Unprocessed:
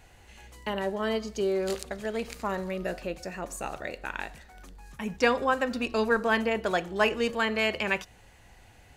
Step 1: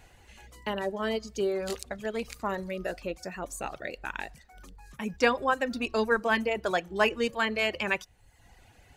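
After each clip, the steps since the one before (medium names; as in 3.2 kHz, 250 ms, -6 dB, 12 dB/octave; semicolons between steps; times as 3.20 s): reverb removal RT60 0.81 s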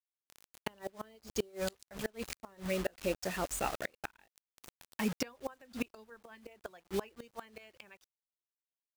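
bit crusher 7-bit; inverted gate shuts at -21 dBFS, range -30 dB; trim +1 dB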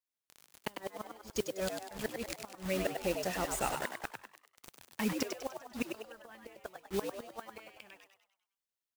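modulation noise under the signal 18 dB; frequency-shifting echo 99 ms, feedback 46%, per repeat +99 Hz, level -6 dB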